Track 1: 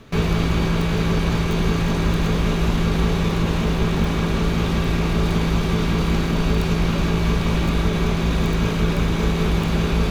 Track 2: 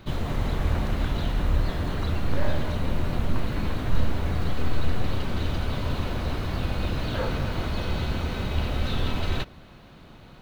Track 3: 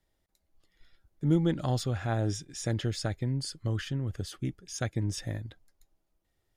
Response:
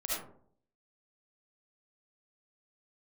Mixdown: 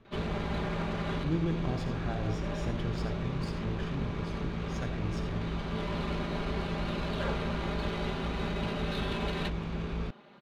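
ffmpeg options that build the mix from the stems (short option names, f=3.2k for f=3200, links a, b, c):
-filter_complex "[0:a]volume=-15dB[a];[1:a]highpass=260,aecho=1:1:5:0.86,adelay=50,volume=-5dB[b];[2:a]volume=-9.5dB,asplit=3[c][d][e];[d]volume=-6dB[f];[e]apad=whole_len=461606[g];[b][g]sidechaincompress=threshold=-50dB:ratio=3:attack=16:release=689[h];[3:a]atrim=start_sample=2205[i];[f][i]afir=irnorm=-1:irlink=0[j];[a][h][c][j]amix=inputs=4:normalize=0,adynamicsmooth=sensitivity=7:basefreq=3.6k"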